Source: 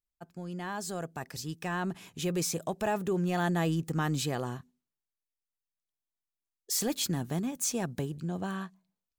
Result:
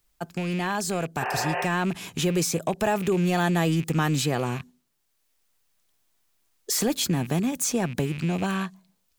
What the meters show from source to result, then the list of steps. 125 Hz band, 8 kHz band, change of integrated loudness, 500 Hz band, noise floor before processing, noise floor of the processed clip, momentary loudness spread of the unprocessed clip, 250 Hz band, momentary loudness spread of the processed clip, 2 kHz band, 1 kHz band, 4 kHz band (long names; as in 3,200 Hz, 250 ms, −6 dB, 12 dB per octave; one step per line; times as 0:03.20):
+7.0 dB, +5.5 dB, +6.5 dB, +7.0 dB, below −85 dBFS, −72 dBFS, 10 LU, +7.0 dB, 6 LU, +8.5 dB, +7.5 dB, +7.0 dB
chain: loose part that buzzes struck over −44 dBFS, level −39 dBFS
in parallel at −3 dB: downward compressor, threshold −38 dBFS, peak gain reduction 12 dB
on the sum: healed spectral selection 0:01.24–0:01.62, 380–3,100 Hz
multiband upward and downward compressor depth 40%
level +5 dB